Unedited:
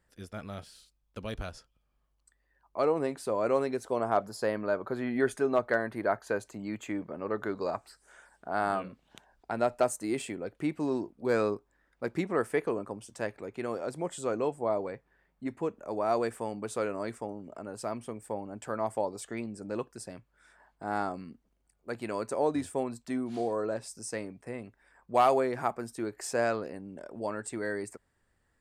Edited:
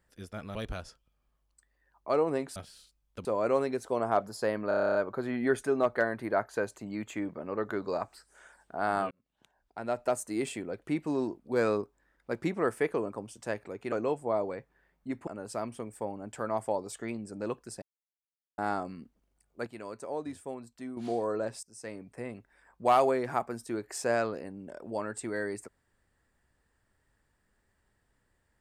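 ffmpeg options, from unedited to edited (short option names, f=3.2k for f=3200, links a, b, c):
-filter_complex "[0:a]asplit=21[a][b][c][d][e][f][g][h][i][j][k][l][m][n][o][p][q][r][s][t][u];[a]atrim=end=0.552[v];[b]atrim=start=1.238:end=3.252[w];[c]atrim=start=0.548:end=1.242[x];[d]atrim=start=3.248:end=4.712[y];[e]atrim=start=4.678:end=4.712[z];[f]atrim=start=4.678:end=4.712[aa];[g]atrim=start=4.678:end=4.712[ab];[h]atrim=start=4.678:end=4.712[ac];[i]atrim=start=4.678:end=4.712[ad];[j]atrim=start=4.678:end=4.712[ae];[k]atrim=start=4.678:end=4.712[af];[l]atrim=start=4.678:end=4.712[ag];[m]atrim=start=4.678:end=8.84,asetpts=PTS-STARTPTS,afade=t=out:st=4.158:d=0.004:c=hsin[ah];[n]atrim=start=8.84:end=13.652,asetpts=PTS-STARTPTS,afade=t=in:d=1.32[ai];[o]atrim=start=14.278:end=15.632[aj];[p]atrim=start=17.558:end=20.11,asetpts=PTS-STARTPTS,afade=t=out:st=2.548:d=0.004:c=hsin[ak];[q]atrim=start=20.11:end=20.87,asetpts=PTS-STARTPTS,volume=0[al];[r]atrim=start=20.87:end=21.962,asetpts=PTS-STARTPTS,afade=t=in:d=0.004:c=hsin[am];[s]atrim=start=21.958:end=23.262,asetpts=PTS-STARTPTS,volume=-8dB[an];[t]atrim=start=23.258:end=23.92,asetpts=PTS-STARTPTS,afade=t=out:st=0.658:d=0.004:c=hsin:silence=0.0944061[ao];[u]atrim=start=23.92,asetpts=PTS-STARTPTS,afade=t=in:d=0.51:silence=0.0944061[ap];[v][w]acrossfade=d=0.004:c1=hsin:c2=hsin[aq];[aq][x]acrossfade=d=0.004:c1=hsin:c2=hsin[ar];[ar][y]acrossfade=d=0.004:c1=hsin:c2=hsin[as];[as][z]acrossfade=d=0.004:c1=hsin:c2=hsin[at];[at][aa]acrossfade=d=0.004:c1=hsin:c2=hsin[au];[au][ab]acrossfade=d=0.004:c1=hsin:c2=hsin[av];[av][ac]acrossfade=d=0.004:c1=hsin:c2=hsin[aw];[aw][ad]acrossfade=d=0.004:c1=hsin:c2=hsin[ax];[ax][ae]acrossfade=d=0.004:c1=hsin:c2=hsin[ay];[ay][af]acrossfade=d=0.004:c1=hsin:c2=hsin[az];[az][ag]acrossfade=d=0.004:c1=hsin:c2=hsin[ba];[ah][ai]concat=n=2:v=0:a=1[bb];[ba][bb]acrossfade=d=0.004:c1=hsin:c2=hsin[bc];[bc][aj]acrossfade=d=0.004:c1=hsin:c2=hsin[bd];[ak][al][am]concat=n=3:v=0:a=1[be];[bd][be]acrossfade=d=0.004:c1=hsin:c2=hsin[bf];[bf][an]acrossfade=d=0.004:c1=hsin:c2=hsin[bg];[ao][ap]concat=n=2:v=0:a=1[bh];[bg][bh]acrossfade=d=0.004:c1=hsin:c2=hsin"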